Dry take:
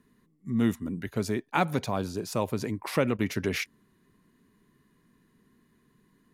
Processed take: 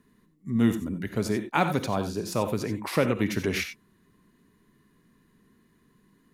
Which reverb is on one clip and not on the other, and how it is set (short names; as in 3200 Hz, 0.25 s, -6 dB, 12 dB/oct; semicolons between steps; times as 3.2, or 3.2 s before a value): non-linear reverb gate 0.11 s rising, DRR 8.5 dB; gain +1.5 dB